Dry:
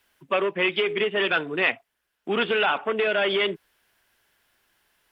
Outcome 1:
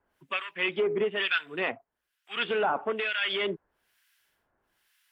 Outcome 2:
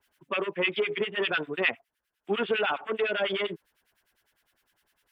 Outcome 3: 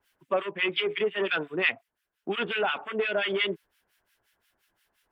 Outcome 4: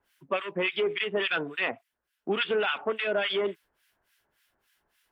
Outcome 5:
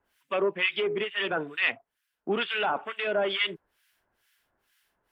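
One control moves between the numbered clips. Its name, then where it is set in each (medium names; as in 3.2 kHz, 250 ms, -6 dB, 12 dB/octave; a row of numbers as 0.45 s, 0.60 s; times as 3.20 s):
harmonic tremolo, rate: 1.1 Hz, 9.9 Hz, 5.7 Hz, 3.5 Hz, 2.2 Hz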